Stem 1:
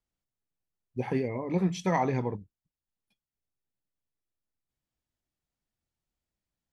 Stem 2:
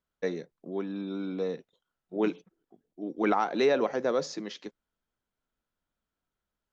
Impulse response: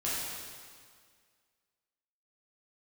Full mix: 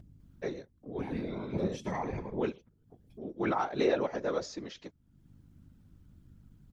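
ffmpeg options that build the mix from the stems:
-filter_complex "[0:a]aeval=exprs='val(0)+0.00126*(sin(2*PI*50*n/s)+sin(2*PI*2*50*n/s)/2+sin(2*PI*3*50*n/s)/3+sin(2*PI*4*50*n/s)/4+sin(2*PI*5*50*n/s)/5)':channel_layout=same,volume=-2.5dB,asplit=2[link_01][link_02];[link_02]volume=-12dB[link_03];[1:a]adelay=200,volume=1.5dB[link_04];[link_03]aecho=0:1:110:1[link_05];[link_01][link_04][link_05]amix=inputs=3:normalize=0,acompressor=mode=upward:threshold=-38dB:ratio=2.5,afftfilt=real='hypot(re,im)*cos(2*PI*random(0))':imag='hypot(re,im)*sin(2*PI*random(1))':win_size=512:overlap=0.75"

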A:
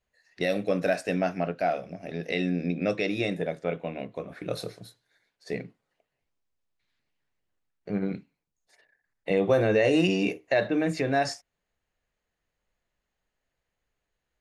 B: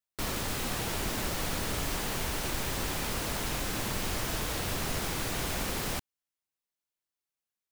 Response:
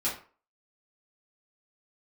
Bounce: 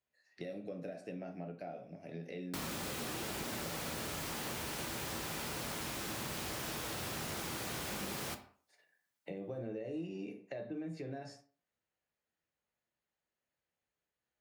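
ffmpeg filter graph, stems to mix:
-filter_complex "[0:a]acrossover=split=490[link_01][link_02];[link_02]acompressor=threshold=-45dB:ratio=2.5[link_03];[link_01][link_03]amix=inputs=2:normalize=0,volume=-12dB,asplit=2[link_04][link_05];[link_05]volume=-7.5dB[link_06];[1:a]adelay=2350,volume=0.5dB,asplit=2[link_07][link_08];[link_08]volume=-11.5dB[link_09];[2:a]atrim=start_sample=2205[link_10];[link_06][link_09]amix=inputs=2:normalize=0[link_11];[link_11][link_10]afir=irnorm=-1:irlink=0[link_12];[link_04][link_07][link_12]amix=inputs=3:normalize=0,highpass=100,acompressor=threshold=-41dB:ratio=3"

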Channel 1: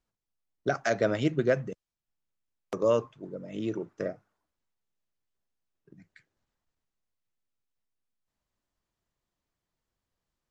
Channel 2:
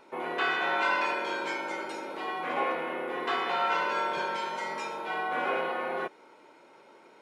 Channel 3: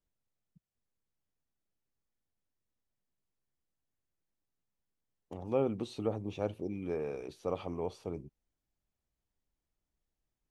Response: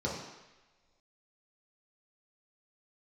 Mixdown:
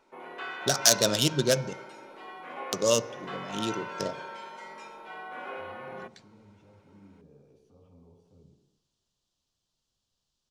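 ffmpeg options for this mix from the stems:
-filter_complex "[0:a]adynamicsmooth=sensitivity=7.5:basefreq=2800,aexciter=amount=10.6:drive=8.3:freq=3200,volume=0dB,asplit=2[link_01][link_02];[link_02]volume=-22.5dB[link_03];[1:a]volume=-9.5dB,asplit=2[link_04][link_05];[link_05]volume=-23dB[link_06];[2:a]acrossover=split=280[link_07][link_08];[link_08]acompressor=threshold=-43dB:ratio=6[link_09];[link_07][link_09]amix=inputs=2:normalize=0,alimiter=level_in=10dB:limit=-24dB:level=0:latency=1,volume=-10dB,adelay=250,volume=-18.5dB,asplit=2[link_10][link_11];[link_11]volume=-6.5dB[link_12];[3:a]atrim=start_sample=2205[link_13];[link_03][link_06][link_12]amix=inputs=3:normalize=0[link_14];[link_14][link_13]afir=irnorm=-1:irlink=0[link_15];[link_01][link_04][link_10][link_15]amix=inputs=4:normalize=0"

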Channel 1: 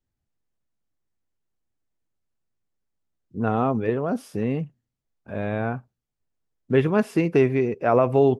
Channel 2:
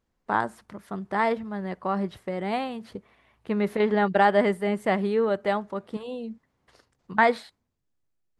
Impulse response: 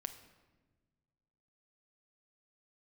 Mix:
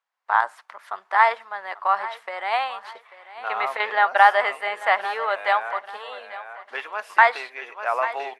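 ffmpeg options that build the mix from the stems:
-filter_complex "[0:a]volume=-7dB,asplit=2[link_01][link_02];[link_02]volume=-7.5dB[link_03];[1:a]highshelf=frequency=5400:gain=-9,volume=2dB,asplit=2[link_04][link_05];[link_05]volume=-16.5dB[link_06];[link_03][link_06]amix=inputs=2:normalize=0,aecho=0:1:841|1682|2523|3364:1|0.31|0.0961|0.0298[link_07];[link_01][link_04][link_07]amix=inputs=3:normalize=0,highpass=frequency=830:width=0.5412,highpass=frequency=830:width=1.3066,highshelf=frequency=4600:gain=-6,dynaudnorm=framelen=120:gausssize=5:maxgain=9.5dB"

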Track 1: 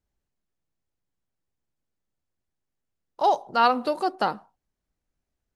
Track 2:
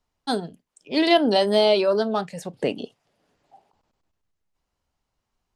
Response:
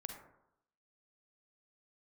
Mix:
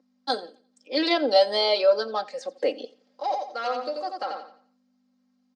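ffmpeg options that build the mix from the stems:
-filter_complex "[0:a]asoftclip=type=tanh:threshold=-11.5dB,volume=-8.5dB,asplit=2[link_01][link_02];[link_02]volume=-4dB[link_03];[1:a]aeval=exprs='val(0)+0.00794*(sin(2*PI*50*n/s)+sin(2*PI*2*50*n/s)/2+sin(2*PI*3*50*n/s)/3+sin(2*PI*4*50*n/s)/4+sin(2*PI*5*50*n/s)/5)':channel_layout=same,volume=-3dB,asplit=2[link_04][link_05];[link_05]volume=-21dB[link_06];[link_03][link_06]amix=inputs=2:normalize=0,aecho=0:1:87|174|261|348|435:1|0.32|0.102|0.0328|0.0105[link_07];[link_01][link_04][link_07]amix=inputs=3:normalize=0,highpass=frequency=360:width=0.5412,highpass=frequency=360:width=1.3066,equalizer=frequency=550:width_type=q:width=4:gain=4,equalizer=frequency=940:width_type=q:width=4:gain=-5,equalizer=frequency=2800:width_type=q:width=4:gain=-5,equalizer=frequency=4800:width_type=q:width=4:gain=6,lowpass=frequency=6600:width=0.5412,lowpass=frequency=6600:width=1.3066,aecho=1:1:3.8:0.85"

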